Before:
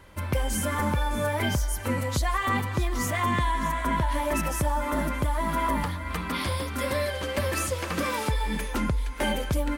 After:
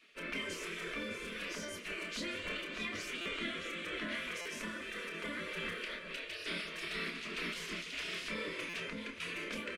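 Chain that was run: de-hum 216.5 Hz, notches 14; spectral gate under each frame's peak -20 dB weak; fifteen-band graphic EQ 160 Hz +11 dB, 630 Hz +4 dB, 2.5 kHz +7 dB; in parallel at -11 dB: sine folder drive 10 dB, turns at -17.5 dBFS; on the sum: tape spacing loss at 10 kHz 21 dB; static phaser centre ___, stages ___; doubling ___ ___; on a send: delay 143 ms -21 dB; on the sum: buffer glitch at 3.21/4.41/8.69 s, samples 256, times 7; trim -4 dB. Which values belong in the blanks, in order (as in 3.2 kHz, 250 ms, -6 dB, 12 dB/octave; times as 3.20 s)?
330 Hz, 4, 29 ms, -7 dB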